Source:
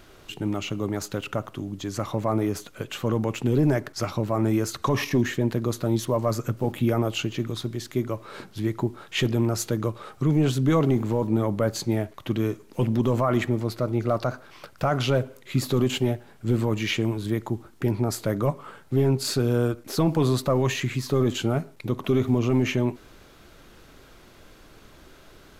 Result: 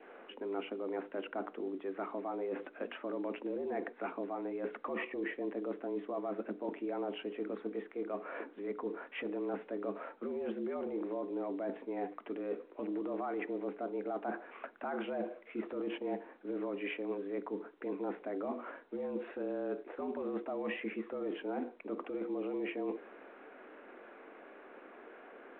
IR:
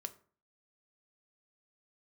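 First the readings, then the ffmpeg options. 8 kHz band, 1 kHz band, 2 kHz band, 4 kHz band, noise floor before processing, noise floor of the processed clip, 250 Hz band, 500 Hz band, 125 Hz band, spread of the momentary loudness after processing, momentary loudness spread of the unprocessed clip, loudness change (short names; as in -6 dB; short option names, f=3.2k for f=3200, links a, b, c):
under -40 dB, -11.0 dB, -11.0 dB, -21.0 dB, -51 dBFS, -57 dBFS, -14.5 dB, -10.5 dB, under -30 dB, 7 LU, 8 LU, -14.0 dB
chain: -af "aemphasis=mode=reproduction:type=75fm,highpass=f=170:t=q:w=0.5412,highpass=f=170:t=q:w=1.307,lowpass=f=2.5k:t=q:w=0.5176,lowpass=f=2.5k:t=q:w=0.7071,lowpass=f=2.5k:t=q:w=1.932,afreqshift=89,adynamicequalizer=threshold=0.00447:dfrequency=1300:dqfactor=2.8:tfrequency=1300:tqfactor=2.8:attack=5:release=100:ratio=0.375:range=4:mode=cutabove:tftype=bell,alimiter=limit=-20dB:level=0:latency=1:release=10,areverse,acompressor=threshold=-35dB:ratio=6,areverse,bandreject=f=60:t=h:w=6,bandreject=f=120:t=h:w=6,bandreject=f=180:t=h:w=6,bandreject=f=240:t=h:w=6,bandreject=f=300:t=h:w=6,bandreject=f=360:t=h:w=6,bandreject=f=420:t=h:w=6,bandreject=f=480:t=h:w=6" -ar 8000 -c:a pcm_mulaw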